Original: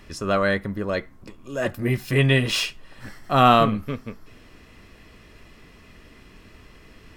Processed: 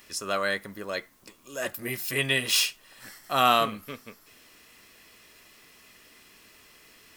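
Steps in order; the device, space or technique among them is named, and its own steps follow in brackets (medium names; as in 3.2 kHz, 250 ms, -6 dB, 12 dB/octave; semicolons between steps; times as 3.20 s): turntable without a phono preamp (RIAA curve recording; white noise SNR 35 dB); trim -5.5 dB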